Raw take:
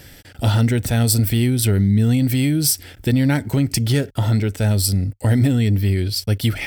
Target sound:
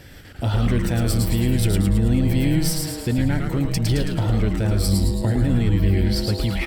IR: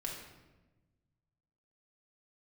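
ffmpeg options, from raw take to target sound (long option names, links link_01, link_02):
-filter_complex "[0:a]highshelf=frequency=4800:gain=-10,alimiter=limit=-13.5dB:level=0:latency=1:release=156,asplit=9[link_01][link_02][link_03][link_04][link_05][link_06][link_07][link_08][link_09];[link_02]adelay=109,afreqshift=-150,volume=-3dB[link_10];[link_03]adelay=218,afreqshift=-300,volume=-8dB[link_11];[link_04]adelay=327,afreqshift=-450,volume=-13.1dB[link_12];[link_05]adelay=436,afreqshift=-600,volume=-18.1dB[link_13];[link_06]adelay=545,afreqshift=-750,volume=-23.1dB[link_14];[link_07]adelay=654,afreqshift=-900,volume=-28.2dB[link_15];[link_08]adelay=763,afreqshift=-1050,volume=-33.2dB[link_16];[link_09]adelay=872,afreqshift=-1200,volume=-38.3dB[link_17];[link_01][link_10][link_11][link_12][link_13][link_14][link_15][link_16][link_17]amix=inputs=9:normalize=0"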